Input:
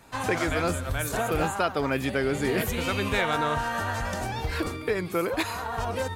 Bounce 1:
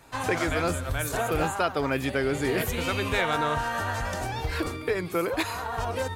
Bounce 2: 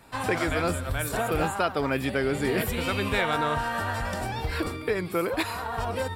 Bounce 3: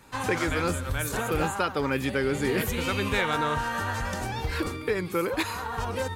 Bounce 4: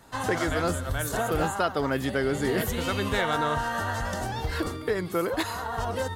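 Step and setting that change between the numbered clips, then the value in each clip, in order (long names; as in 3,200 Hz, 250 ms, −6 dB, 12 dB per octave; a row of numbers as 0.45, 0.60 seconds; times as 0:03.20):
notch filter, centre frequency: 210, 6,400, 670, 2,400 Hertz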